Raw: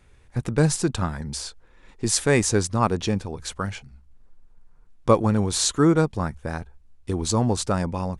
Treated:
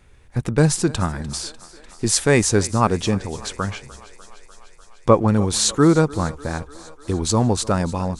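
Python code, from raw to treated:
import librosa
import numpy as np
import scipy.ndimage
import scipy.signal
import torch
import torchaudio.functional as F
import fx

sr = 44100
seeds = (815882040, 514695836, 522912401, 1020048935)

y = fx.env_lowpass_down(x, sr, base_hz=2200.0, full_db=-18.0, at=(3.13, 5.28))
y = fx.echo_thinned(y, sr, ms=298, feedback_pct=74, hz=270.0, wet_db=-19)
y = y * librosa.db_to_amplitude(3.5)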